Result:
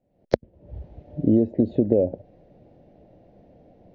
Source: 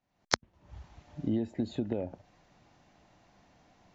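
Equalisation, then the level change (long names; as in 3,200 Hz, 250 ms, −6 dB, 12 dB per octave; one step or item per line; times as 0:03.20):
high-frequency loss of the air 240 metres
low shelf with overshoot 770 Hz +12.5 dB, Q 3
−2.0 dB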